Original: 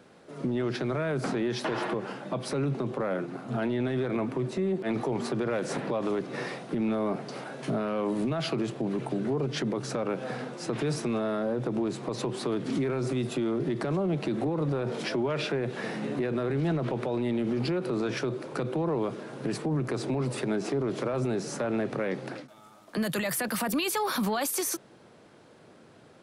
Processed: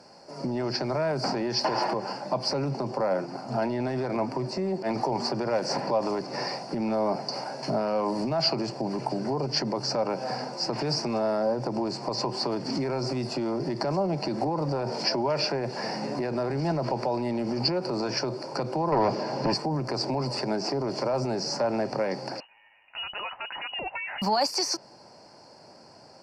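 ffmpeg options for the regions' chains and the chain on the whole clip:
ffmpeg -i in.wav -filter_complex "[0:a]asettb=1/sr,asplit=3[link_01][link_02][link_03];[link_01]atrim=end=18.924[link_04];[link_02]atrim=start=18.92:end=19.54,asetpts=PTS-STARTPTS,afade=type=in:duration=0.004:curve=qsin,afade=type=out:start_time=0.616:duration=0.004:curve=qsin,equalizer=frequency=1400:width=4.4:gain=-4.5,aeval=exprs='0.0944*sin(PI/2*1.58*val(0)/0.0944)':channel_layout=same,lowpass=4600[link_05];[link_03]atrim=start=19.536[link_06];[link_04][link_05]acrossfade=duration=0.004:curve1=hsin:curve2=qsin[link_07];[link_07][link_06]acrossfade=duration=0.004:curve1=qsin:curve2=hsin,asettb=1/sr,asplit=3[link_08][link_09][link_10];[link_08]atrim=end=22.404[link_11];[link_09]atrim=start=22.4:end=24.22,asetpts=PTS-STARTPTS,afade=type=in:duration=0.004:curve=qsin,afade=type=out:start_time=1.816:duration=0.004:curve=qsin,lowpass=frequency=2600:width_type=q:width=0.5098,lowpass=frequency=2600:width_type=q:width=0.6013,lowpass=frequency=2600:width_type=q:width=0.9,lowpass=frequency=2600:width_type=q:width=2.563,afreqshift=-3100,highshelf=frequency=2200:gain=-11[link_12];[link_10]atrim=start=24.216[link_13];[link_11][link_12]acrossfade=duration=0.004:curve1=hsin:curve2=qsin[link_14];[link_14][link_13]acrossfade=duration=0.004:curve1=qsin:curve2=hsin,superequalizer=8b=2.24:9b=3.16:13b=0.355:14b=3.98:15b=1.78,acrossover=split=5800[link_15][link_16];[link_16]acompressor=threshold=-52dB:ratio=4:attack=1:release=60[link_17];[link_15][link_17]amix=inputs=2:normalize=0,equalizer=frequency=4800:width_type=o:width=0.37:gain=7.5,volume=-1dB" out.wav

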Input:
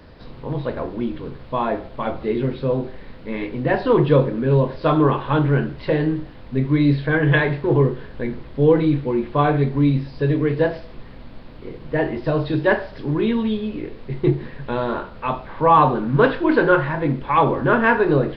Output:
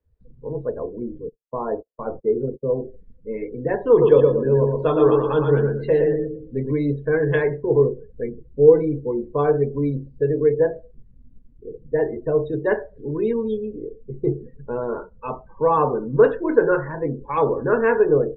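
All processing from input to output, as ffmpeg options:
ffmpeg -i in.wav -filter_complex "[0:a]asettb=1/sr,asplit=3[link_01][link_02][link_03];[link_01]atrim=end=1.294[link_04];[link_02]atrim=start=1.29:end=2.82,asetpts=PTS-STARTPTS,afade=type=in:duration=0.004:curve=qsin,afade=type=out:start_time=1.526:duration=0.004:curve=qsin,lowpass=2200,agate=range=-34dB:threshold=-31dB:ratio=16:release=100:detection=peak[link_05];[link_03]atrim=start=2.816[link_06];[link_04][link_05]acrossfade=duration=0.004:curve1=hsin:curve2=qsin[link_07];[link_07][link_06]acrossfade=duration=0.004:curve1=qsin:curve2=hsin,asettb=1/sr,asplit=3[link_08][link_09][link_10];[link_08]atrim=end=3.904[link_11];[link_09]atrim=start=3.9:end=6.73,asetpts=PTS-STARTPTS,afade=type=in:duration=0.004:curve=qsin,afade=type=out:start_time=2.826:duration=0.004:curve=qsin,highshelf=frequency=3400:gain=9.5,aecho=1:1:115|230|345|460|575:0.668|0.274|0.112|0.0461|0.0189,atrim=end_sample=124803[link_12];[link_10]atrim=start=6.726[link_13];[link_11][link_12]acrossfade=duration=0.004:curve1=hsin:curve2=qsin[link_14];[link_14][link_13]acrossfade=duration=0.004:curve1=qsin:curve2=hsin,afftdn=noise_reduction=34:noise_floor=-28,lowpass=3500,equalizer=frequency=450:width_type=o:width=0.32:gain=14,volume=-7dB" out.wav

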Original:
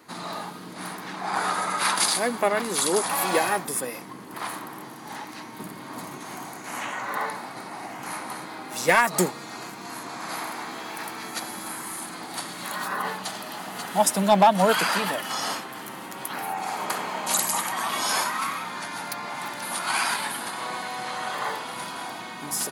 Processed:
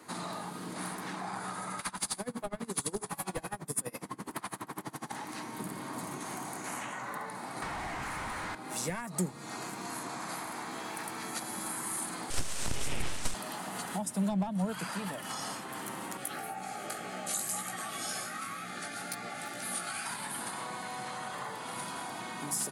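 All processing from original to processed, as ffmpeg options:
ffmpeg -i in.wav -filter_complex "[0:a]asettb=1/sr,asplit=3[link_01][link_02][link_03];[link_01]atrim=end=1.794[link_04];[link_02]atrim=start=1.79:end=5.12,asetpts=PTS-STARTPTS,afade=type=in:duration=0.004:curve=qsin,afade=type=out:start_time=3.326:duration=0.004:curve=qsin,bandreject=frequency=60:width_type=h:width=6,bandreject=frequency=120:width_type=h:width=6,bandreject=frequency=180:width_type=h:width=6,bandreject=frequency=240:width_type=h:width=6,bandreject=frequency=300:width_type=h:width=6,bandreject=frequency=360:width_type=h:width=6,bandreject=frequency=420:width_type=h:width=6,bandreject=frequency=480:width_type=h:width=6,bandreject=frequency=540:width_type=h:width=6,bandreject=frequency=600:width_type=h:width=6,aeval=exprs='0.355*sin(PI/2*1.58*val(0)/0.355)':channel_layout=same,aeval=exprs='val(0)*pow(10,-26*(0.5-0.5*cos(2*PI*12*n/s))/20)':channel_layout=same[link_05];[link_03]atrim=start=5.116[link_06];[link_04][link_05]acrossfade=duration=0.004:curve1=hsin:curve2=qsin[link_07];[link_07][link_06]acrossfade=duration=0.004:curve1=qsin:curve2=hsin,asettb=1/sr,asplit=3[link_08][link_09][link_10];[link_08]atrim=end=7.624[link_11];[link_09]atrim=start=7.62:end=8.55,asetpts=PTS-STARTPTS,afade=type=in:duration=0.004:curve=qsin,afade=type=out:start_time=0.926:duration=0.004:curve=qsin,equalizer=frequency=1900:width=1:gain=5.5,asplit=2[link_12][link_13];[link_13]highpass=frequency=720:poles=1,volume=30dB,asoftclip=type=tanh:threshold=-19dB[link_14];[link_12][link_14]amix=inputs=2:normalize=0,lowpass=frequency=2700:poles=1,volume=-6dB[link_15];[link_10]atrim=start=8.546[link_16];[link_11][link_15]acrossfade=duration=0.004:curve1=hsin:curve2=qsin[link_17];[link_17][link_16]acrossfade=duration=0.004:curve1=qsin:curve2=hsin,asettb=1/sr,asplit=3[link_18][link_19][link_20];[link_18]atrim=end=12.304[link_21];[link_19]atrim=start=12.3:end=13.34,asetpts=PTS-STARTPTS,afade=type=in:duration=0.004:curve=qsin,afade=type=out:start_time=1.036:duration=0.004:curve=qsin,highshelf=frequency=2200:gain=11.5,aeval=exprs='abs(val(0))':channel_layout=same,lowpass=8800[link_22];[link_20]atrim=start=13.336[link_23];[link_21][link_22]acrossfade=duration=0.004:curve1=hsin:curve2=qsin[link_24];[link_24][link_23]acrossfade=duration=0.004:curve1=qsin:curve2=hsin,asettb=1/sr,asplit=3[link_25][link_26][link_27];[link_25]atrim=end=16.174[link_28];[link_26]atrim=start=16.17:end=20.06,asetpts=PTS-STARTPTS,afade=type=in:duration=0.004:curve=qsin,afade=type=out:start_time=3.886:duration=0.004:curve=qsin,flanger=delay=16:depth=2.8:speed=2,asuperstop=centerf=980:order=20:qfactor=4.2[link_29];[link_27]atrim=start=20.056[link_30];[link_28][link_29]acrossfade=duration=0.004:curve1=hsin:curve2=qsin[link_31];[link_31][link_30]acrossfade=duration=0.004:curve1=qsin:curve2=hsin,highshelf=frequency=3100:gain=-7.5,acrossover=split=190[link_32][link_33];[link_33]acompressor=threshold=-37dB:ratio=10[link_34];[link_32][link_34]amix=inputs=2:normalize=0,equalizer=frequency=8800:width_type=o:width=1:gain=12" out.wav

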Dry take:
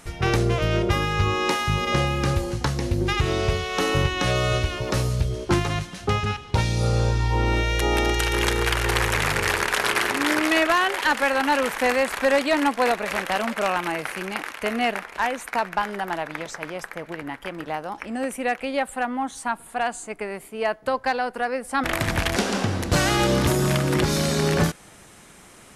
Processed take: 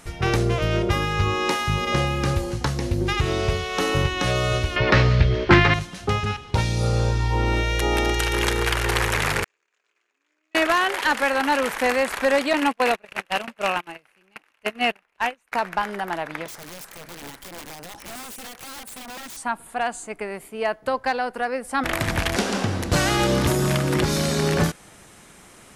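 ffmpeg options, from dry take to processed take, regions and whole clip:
ffmpeg -i in.wav -filter_complex "[0:a]asettb=1/sr,asplit=3[link_01][link_02][link_03];[link_01]atrim=end=4.764[link_04];[link_02]atrim=start=4.76:end=5.74,asetpts=PTS-STARTPTS,afade=type=in:duration=0.004:curve=qsin,afade=type=out:start_time=0.976:duration=0.004:curve=qsin,lowpass=frequency=4600:width=0.5412,lowpass=frequency=4600:width=1.3066,equalizer=frequency=1900:width_type=o:width=0.95:gain=10,acontrast=62[link_05];[link_03]atrim=start=5.736[link_06];[link_04][link_05]acrossfade=duration=0.004:curve1=hsin:curve2=qsin[link_07];[link_07][link_06]acrossfade=duration=0.004:curve1=qsin:curve2=hsin,asettb=1/sr,asplit=3[link_08][link_09][link_10];[link_08]atrim=end=9.444[link_11];[link_09]atrim=start=9.44:end=10.55,asetpts=PTS-STARTPTS,afade=type=in:duration=0.004:curve=qsin,afade=type=out:start_time=1.106:duration=0.004:curve=qsin,agate=range=-52dB:threshold=-14dB:ratio=16:release=100:detection=peak,highpass=330,equalizer=frequency=850:width_type=q:width=4:gain=-5,equalizer=frequency=2500:width_type=q:width=4:gain=7,equalizer=frequency=6900:width_type=q:width=4:gain=10,lowpass=frequency=7800:width=0.5412,lowpass=frequency=7800:width=1.3066,asplit=2[link_12][link_13];[link_13]adelay=26,volume=-10.5dB[link_14];[link_12][link_14]amix=inputs=2:normalize=0,atrim=end_sample=48951[link_15];[link_10]atrim=start=10.546[link_16];[link_11][link_15]acrossfade=duration=0.004:curve1=hsin:curve2=qsin[link_17];[link_17][link_16]acrossfade=duration=0.004:curve1=qsin:curve2=hsin,asettb=1/sr,asplit=3[link_18][link_19][link_20];[link_18]atrim=end=12.534[link_21];[link_19]atrim=start=12.53:end=15.52,asetpts=PTS-STARTPTS,afade=type=in:duration=0.004:curve=qsin,afade=type=out:start_time=2.986:duration=0.004:curve=qsin,equalizer=frequency=2700:width_type=o:width=0.3:gain=7,agate=range=-31dB:threshold=-24dB:ratio=16:release=100:detection=peak[link_22];[link_20]atrim=start=15.516[link_23];[link_21][link_22]acrossfade=duration=0.004:curve1=hsin:curve2=qsin[link_24];[link_24][link_23]acrossfade=duration=0.004:curve1=qsin:curve2=hsin,asettb=1/sr,asplit=3[link_25][link_26][link_27];[link_25]atrim=end=16.484[link_28];[link_26]atrim=start=16.48:end=19.37,asetpts=PTS-STARTPTS,afade=type=in:duration=0.004:curve=qsin,afade=type=out:start_time=2.886:duration=0.004:curve=qsin,bass=frequency=250:gain=3,treble=frequency=4000:gain=12,acompressor=threshold=-31dB:ratio=16:attack=3.2:release=140:knee=1:detection=peak,aeval=exprs='(mod(42.2*val(0)+1,2)-1)/42.2':channel_layout=same[link_29];[link_27]atrim=start=19.366[link_30];[link_28][link_29]acrossfade=duration=0.004:curve1=hsin:curve2=qsin[link_31];[link_31][link_30]acrossfade=duration=0.004:curve1=qsin:curve2=hsin" out.wav

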